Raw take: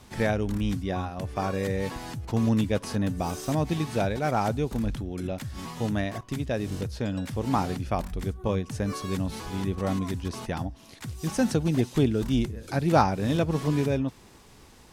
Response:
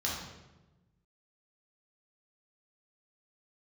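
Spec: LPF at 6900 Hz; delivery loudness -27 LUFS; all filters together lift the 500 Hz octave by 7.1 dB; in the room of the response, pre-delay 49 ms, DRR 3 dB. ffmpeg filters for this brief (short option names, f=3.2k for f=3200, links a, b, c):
-filter_complex "[0:a]lowpass=6.9k,equalizer=f=500:t=o:g=8.5,asplit=2[a][b];[1:a]atrim=start_sample=2205,adelay=49[c];[b][c]afir=irnorm=-1:irlink=0,volume=-9dB[d];[a][d]amix=inputs=2:normalize=0,volume=-4dB"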